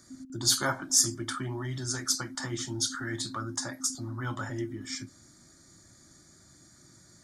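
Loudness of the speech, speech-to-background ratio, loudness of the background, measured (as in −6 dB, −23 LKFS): −30.0 LKFS, 16.0 dB, −46.0 LKFS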